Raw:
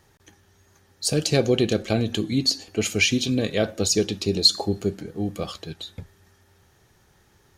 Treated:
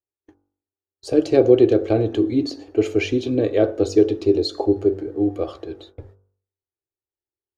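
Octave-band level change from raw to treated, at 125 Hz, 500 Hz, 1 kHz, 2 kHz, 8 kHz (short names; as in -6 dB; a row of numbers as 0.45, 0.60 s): -1.5 dB, +8.0 dB, +2.5 dB, -6.0 dB, under -15 dB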